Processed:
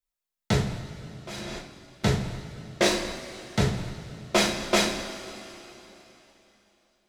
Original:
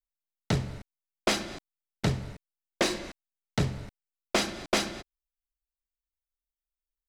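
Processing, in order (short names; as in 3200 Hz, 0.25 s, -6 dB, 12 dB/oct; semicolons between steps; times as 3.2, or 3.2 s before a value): 0.73–1.47 level quantiser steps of 21 dB; two-slope reverb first 0.35 s, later 3.5 s, from -18 dB, DRR -3.5 dB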